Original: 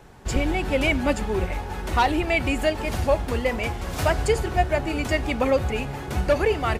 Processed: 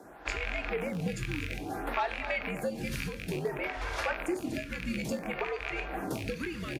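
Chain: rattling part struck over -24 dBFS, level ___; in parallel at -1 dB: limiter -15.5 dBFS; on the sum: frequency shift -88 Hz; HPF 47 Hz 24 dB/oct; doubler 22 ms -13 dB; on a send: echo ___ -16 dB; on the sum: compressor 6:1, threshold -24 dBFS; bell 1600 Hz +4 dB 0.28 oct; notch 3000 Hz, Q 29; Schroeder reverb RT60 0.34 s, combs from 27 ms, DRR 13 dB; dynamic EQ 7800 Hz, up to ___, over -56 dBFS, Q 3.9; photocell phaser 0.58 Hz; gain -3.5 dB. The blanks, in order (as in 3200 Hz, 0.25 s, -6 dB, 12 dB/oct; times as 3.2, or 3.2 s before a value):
-13 dBFS, 0.243 s, -4 dB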